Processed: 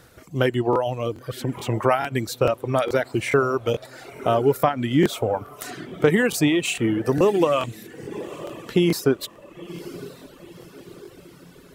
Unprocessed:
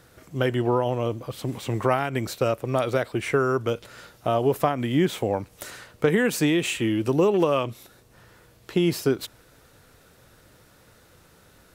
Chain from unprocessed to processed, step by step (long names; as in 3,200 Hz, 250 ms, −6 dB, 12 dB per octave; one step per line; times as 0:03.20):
feedback delay with all-pass diffusion 967 ms, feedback 52%, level −14 dB
reverb reduction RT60 1.3 s
regular buffer underruns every 0.43 s, samples 1,024, repeat, from 0:00.71
level +3.5 dB